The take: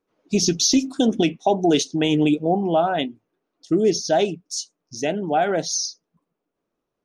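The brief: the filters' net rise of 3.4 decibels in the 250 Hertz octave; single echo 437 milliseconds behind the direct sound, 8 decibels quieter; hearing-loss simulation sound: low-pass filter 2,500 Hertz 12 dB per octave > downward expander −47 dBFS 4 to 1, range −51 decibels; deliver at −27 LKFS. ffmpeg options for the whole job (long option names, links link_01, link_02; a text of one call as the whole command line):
ffmpeg -i in.wav -af "lowpass=2500,equalizer=frequency=250:width_type=o:gain=4.5,aecho=1:1:437:0.398,agate=range=-51dB:threshold=-47dB:ratio=4,volume=-7.5dB" out.wav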